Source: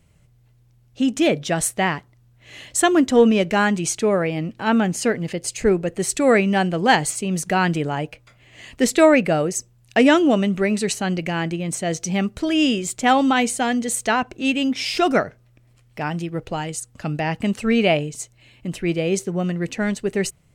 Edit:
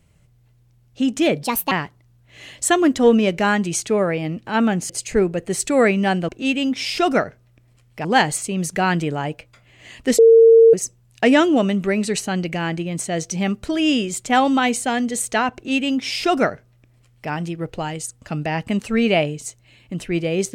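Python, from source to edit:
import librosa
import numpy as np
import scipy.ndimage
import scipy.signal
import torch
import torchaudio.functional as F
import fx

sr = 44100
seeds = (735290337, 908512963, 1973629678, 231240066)

y = fx.edit(x, sr, fx.speed_span(start_s=1.43, length_s=0.41, speed=1.44),
    fx.cut(start_s=5.02, length_s=0.37),
    fx.bleep(start_s=8.92, length_s=0.55, hz=455.0, db=-6.0),
    fx.duplicate(start_s=14.28, length_s=1.76, to_s=6.78), tone=tone)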